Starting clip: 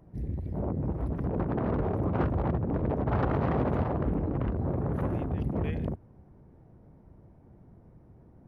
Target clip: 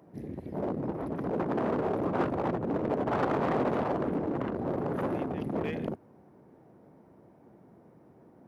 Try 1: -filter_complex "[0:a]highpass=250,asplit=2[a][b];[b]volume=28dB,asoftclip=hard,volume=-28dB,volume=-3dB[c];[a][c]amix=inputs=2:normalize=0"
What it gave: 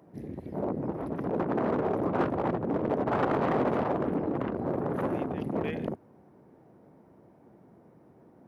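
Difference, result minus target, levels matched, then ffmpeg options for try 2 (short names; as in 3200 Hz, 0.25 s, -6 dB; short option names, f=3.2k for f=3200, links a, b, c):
overloaded stage: distortion -6 dB
-filter_complex "[0:a]highpass=250,asplit=2[a][b];[b]volume=34.5dB,asoftclip=hard,volume=-34.5dB,volume=-3dB[c];[a][c]amix=inputs=2:normalize=0"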